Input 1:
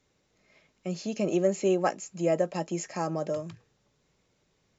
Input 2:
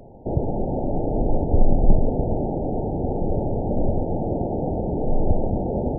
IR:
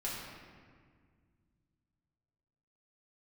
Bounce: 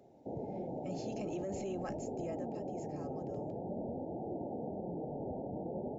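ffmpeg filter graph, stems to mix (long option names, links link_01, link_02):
-filter_complex "[0:a]volume=-10.5dB,afade=type=out:start_time=1.79:duration=0.78:silence=0.266073[link_01];[1:a]flanger=delay=2.4:depth=5.5:regen=65:speed=0.47:shape=triangular,highpass=150,volume=-10dB[link_02];[link_01][link_02]amix=inputs=2:normalize=0,alimiter=level_in=7.5dB:limit=-24dB:level=0:latency=1:release=10,volume=-7.5dB"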